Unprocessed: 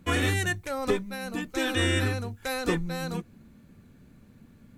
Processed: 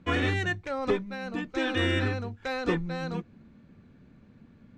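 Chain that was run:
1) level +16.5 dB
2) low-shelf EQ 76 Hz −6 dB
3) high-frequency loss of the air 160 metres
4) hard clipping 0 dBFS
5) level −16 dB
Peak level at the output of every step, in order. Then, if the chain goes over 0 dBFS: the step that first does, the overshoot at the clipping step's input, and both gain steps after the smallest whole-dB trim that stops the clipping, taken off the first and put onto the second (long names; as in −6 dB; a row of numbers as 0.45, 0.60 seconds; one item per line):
+6.0, +5.5, +5.0, 0.0, −16.0 dBFS
step 1, 5.0 dB
step 1 +11.5 dB, step 5 −11 dB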